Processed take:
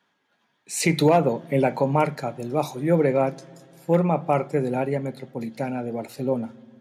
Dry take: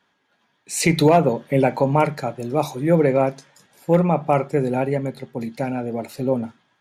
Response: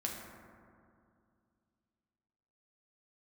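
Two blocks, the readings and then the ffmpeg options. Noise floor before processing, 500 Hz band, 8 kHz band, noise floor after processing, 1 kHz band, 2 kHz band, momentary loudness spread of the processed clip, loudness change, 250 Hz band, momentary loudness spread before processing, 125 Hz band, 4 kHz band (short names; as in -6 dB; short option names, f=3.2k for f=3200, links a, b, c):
-68 dBFS, -3.0 dB, -3.0 dB, -71 dBFS, -3.0 dB, -3.0 dB, 12 LU, -3.0 dB, -3.0 dB, 12 LU, -3.5 dB, -3.0 dB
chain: -filter_complex "[0:a]highpass=93,asplit=2[a][b];[b]equalizer=f=150:t=o:w=0.66:g=8[c];[1:a]atrim=start_sample=2205[d];[c][d]afir=irnorm=-1:irlink=0,volume=-23dB[e];[a][e]amix=inputs=2:normalize=0,volume=-3.5dB"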